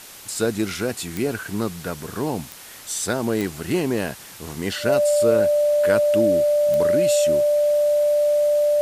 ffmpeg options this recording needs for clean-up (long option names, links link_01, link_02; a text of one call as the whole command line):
ffmpeg -i in.wav -af "adeclick=threshold=4,bandreject=frequency=590:width=30,afwtdn=0.01" out.wav